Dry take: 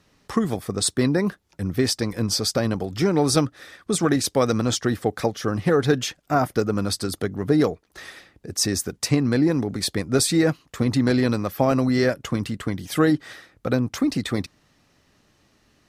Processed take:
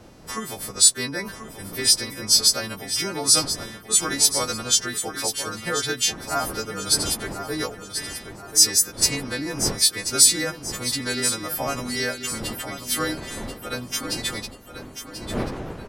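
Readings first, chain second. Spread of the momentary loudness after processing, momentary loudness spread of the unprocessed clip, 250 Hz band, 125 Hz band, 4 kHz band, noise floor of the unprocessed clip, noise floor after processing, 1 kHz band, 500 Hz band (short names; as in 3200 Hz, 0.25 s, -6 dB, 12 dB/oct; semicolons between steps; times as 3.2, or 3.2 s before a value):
16 LU, 9 LU, -11.0 dB, -10.5 dB, +7.5 dB, -64 dBFS, -42 dBFS, -2.0 dB, -8.0 dB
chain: frequency quantiser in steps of 2 st; wind noise 290 Hz -28 dBFS; tilt shelf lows -6.5 dB, about 670 Hz; on a send: feedback echo 1.036 s, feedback 38%, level -9.5 dB; on the sum: gain -6.5 dB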